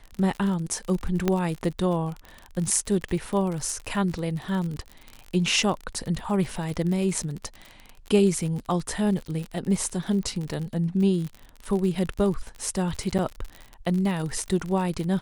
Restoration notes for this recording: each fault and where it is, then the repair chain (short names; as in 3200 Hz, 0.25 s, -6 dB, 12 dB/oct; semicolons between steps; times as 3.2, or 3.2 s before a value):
crackle 53/s -30 dBFS
1.28 pop -9 dBFS
13.18–13.19 gap 8.2 ms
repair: de-click; interpolate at 13.18, 8.2 ms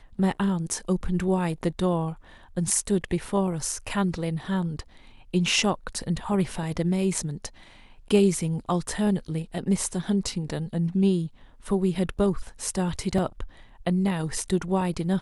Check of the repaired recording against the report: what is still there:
none